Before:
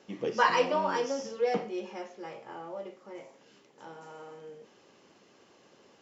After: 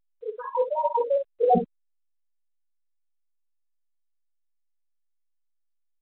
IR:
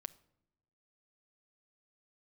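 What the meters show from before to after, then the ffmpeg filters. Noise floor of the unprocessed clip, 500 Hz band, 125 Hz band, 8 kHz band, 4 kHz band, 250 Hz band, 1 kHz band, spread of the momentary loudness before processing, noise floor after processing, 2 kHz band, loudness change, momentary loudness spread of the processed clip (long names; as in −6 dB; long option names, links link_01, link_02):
−62 dBFS, +4.5 dB, +6.0 dB, can't be measured, below −20 dB, +2.5 dB, +3.0 dB, 22 LU, −72 dBFS, below −15 dB, +5.5 dB, 15 LU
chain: -filter_complex "[0:a]afftfilt=real='re*gte(hypot(re,im),0.316)':imag='im*gte(hypot(re,im),0.316)':win_size=1024:overlap=0.75,aemphasis=mode=reproduction:type=riaa,afftfilt=real='re*gte(hypot(re,im),0.0158)':imag='im*gte(hypot(re,im),0.0158)':win_size=1024:overlap=0.75,aecho=1:1:7.2:0.7,adynamicequalizer=threshold=0.00631:dfrequency=3000:dqfactor=0.7:tfrequency=3000:tqfactor=0.7:attack=5:release=100:ratio=0.375:range=1.5:mode=cutabove:tftype=bell,acrossover=split=440[link_01][link_02];[link_02]acompressor=threshold=-32dB:ratio=2[link_03];[link_01][link_03]amix=inputs=2:normalize=0,alimiter=level_in=5dB:limit=-24dB:level=0:latency=1:release=11,volume=-5dB,dynaudnorm=framelen=160:gausssize=9:maxgain=17dB,tremolo=f=3.2:d=0.56,aecho=1:1:12|59:0.562|0.335" -ar 8000 -c:a pcm_alaw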